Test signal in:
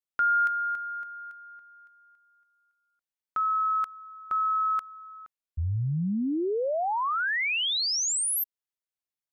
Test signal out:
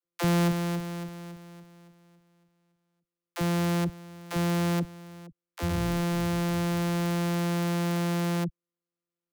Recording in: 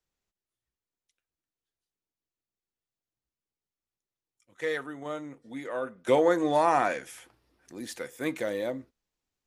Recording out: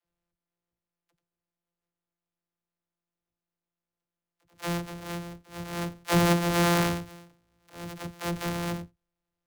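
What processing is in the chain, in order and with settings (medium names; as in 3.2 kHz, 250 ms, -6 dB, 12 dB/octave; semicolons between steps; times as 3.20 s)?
sorted samples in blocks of 256 samples; phase dispersion lows, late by 56 ms, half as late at 330 Hz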